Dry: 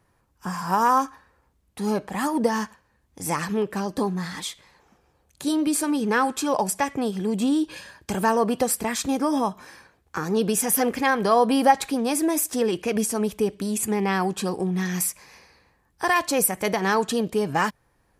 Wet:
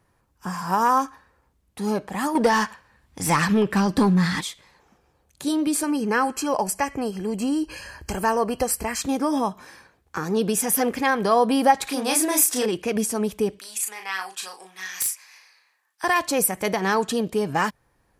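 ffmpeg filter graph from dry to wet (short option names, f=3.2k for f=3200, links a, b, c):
-filter_complex "[0:a]asettb=1/sr,asplit=3[a][b][c];[a]atrim=end=2.354[d];[b]atrim=start=2.35:end=4.41,asetpts=PTS-STARTPTS,afade=t=in:d=0.004:c=qsin,afade=t=out:st=2.056:d=0.004:c=qsin,bandreject=f=6.4k:w=16,asubboost=boost=11:cutoff=210,asplit=2[e][f];[f]highpass=f=720:p=1,volume=16dB,asoftclip=type=tanh:threshold=-7.5dB[g];[e][g]amix=inputs=2:normalize=0,lowpass=f=5k:p=1,volume=-6dB[h];[c]atrim=start=4.406[i];[d][h]acrossfade=d=0.004:c1=hsin:c2=qsin[j];[j][i]acrossfade=d=0.004:c1=qsin:c2=hsin,asettb=1/sr,asplit=3[k][l][m];[k]atrim=end=5.834[n];[l]atrim=start=5.83:end=9.02,asetpts=PTS-STARTPTS,afade=t=in:d=0.004:c=qsin,afade=t=out:st=3.186:d=0.004:c=qsin,asubboost=boost=11:cutoff=63,acompressor=mode=upward:threshold=-31dB:ratio=2.5:attack=3.2:release=140:knee=2.83:detection=peak,asuperstop=centerf=3600:order=20:qfactor=4.8[o];[m]atrim=start=9.016[p];[n][o]acrossfade=d=0.004:c1=hsin:c2=qsin[q];[q][p]acrossfade=d=0.004:c1=qsin:c2=hsin,asettb=1/sr,asplit=3[r][s][t];[r]atrim=end=11.874[u];[s]atrim=start=11.87:end=12.66,asetpts=PTS-STARTPTS,afade=t=in:d=0.004:c=qsin,afade=t=out:st=0.786:d=0.004:c=qsin,acompressor=mode=upward:threshold=-36dB:ratio=2.5:attack=3.2:release=140:knee=2.83:detection=peak,tiltshelf=f=680:g=-5.5,asplit=2[v][w];[w]adelay=32,volume=-3dB[x];[v][x]amix=inputs=2:normalize=0,atrim=end_sample=34839[y];[t]atrim=start=12.656[z];[u][y]acrossfade=d=0.004:c1=hsin:c2=qsin[aa];[aa][z]acrossfade=d=0.004:c1=qsin:c2=hsin,asettb=1/sr,asplit=3[ab][ac][ad];[ab]atrim=end=13.594[ae];[ac]atrim=start=13.59:end=16.04,asetpts=PTS-STARTPTS,afade=t=in:d=0.004:c=qsin,afade=t=out:st=2.446:d=0.004:c=qsin,highpass=1.4k,aeval=exprs='(mod(5.31*val(0)+1,2)-1)/5.31':c=same,asplit=2[af][ag];[ag]adelay=37,volume=-5dB[ah];[af][ah]amix=inputs=2:normalize=0,atrim=end_sample=108045[ai];[ad]atrim=start=16.036[aj];[ae][ai]acrossfade=d=0.004:c1=hsin:c2=qsin[ak];[ak][aj]acrossfade=d=0.004:c1=qsin:c2=hsin"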